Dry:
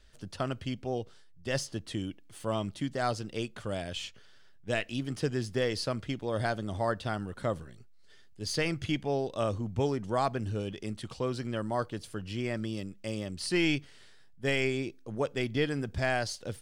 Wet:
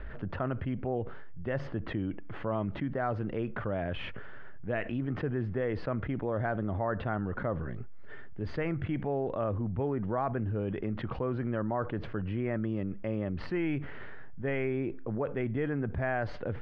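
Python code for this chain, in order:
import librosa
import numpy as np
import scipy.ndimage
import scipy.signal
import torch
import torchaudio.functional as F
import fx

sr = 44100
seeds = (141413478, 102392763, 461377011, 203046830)

y = scipy.signal.sosfilt(scipy.signal.butter(4, 1900.0, 'lowpass', fs=sr, output='sos'), x)
y = fx.env_flatten(y, sr, amount_pct=70)
y = F.gain(torch.from_numpy(y), -4.0).numpy()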